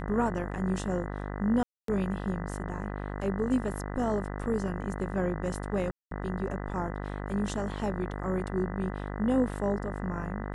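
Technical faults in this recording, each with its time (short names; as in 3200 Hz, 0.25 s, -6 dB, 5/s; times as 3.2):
buzz 50 Hz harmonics 40 -36 dBFS
1.63–1.88 gap 0.253 s
5.91–6.11 gap 0.203 s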